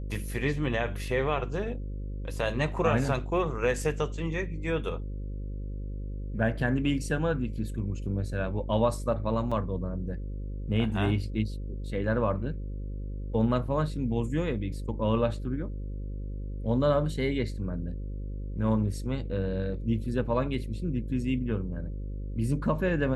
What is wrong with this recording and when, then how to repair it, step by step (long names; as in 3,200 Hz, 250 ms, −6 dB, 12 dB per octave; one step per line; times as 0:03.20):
mains buzz 50 Hz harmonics 11 −35 dBFS
0:09.51–0:09.52: drop-out 5.6 ms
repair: hum removal 50 Hz, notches 11
repair the gap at 0:09.51, 5.6 ms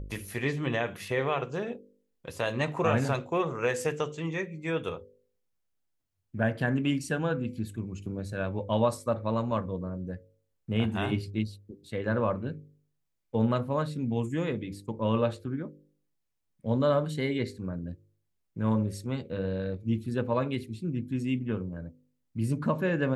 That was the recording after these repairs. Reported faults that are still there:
none of them is left